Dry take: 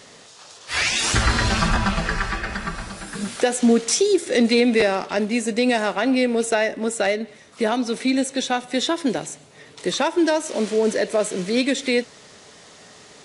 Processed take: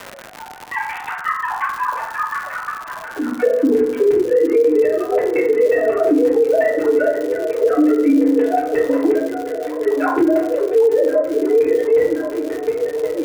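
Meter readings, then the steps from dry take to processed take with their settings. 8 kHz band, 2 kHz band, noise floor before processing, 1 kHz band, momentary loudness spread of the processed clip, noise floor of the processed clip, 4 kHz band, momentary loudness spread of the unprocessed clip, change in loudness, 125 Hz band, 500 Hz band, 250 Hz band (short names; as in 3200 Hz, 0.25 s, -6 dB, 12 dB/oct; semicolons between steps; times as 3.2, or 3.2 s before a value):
under -10 dB, -1.5 dB, -47 dBFS, +3.5 dB, 10 LU, -33 dBFS, under -15 dB, 11 LU, +4.0 dB, under -15 dB, +8.0 dB, +3.5 dB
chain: sine-wave speech; notch 690 Hz, Q 12; on a send: swung echo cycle 1.078 s, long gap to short 3:1, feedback 66%, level -18 dB; on the sum: LFO low-pass saw down 5.6 Hz 420–2100 Hz; compressor, threshold -17 dBFS, peak gain reduction 15 dB; FDN reverb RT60 0.59 s, low-frequency decay 1.6×, high-frequency decay 0.55×, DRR -6 dB; harmonic-percussive split harmonic +5 dB; limiter -2.5 dBFS, peak gain reduction 10 dB; air absorption 81 m; crackle 180/s -20 dBFS; three-band squash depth 40%; gain -4.5 dB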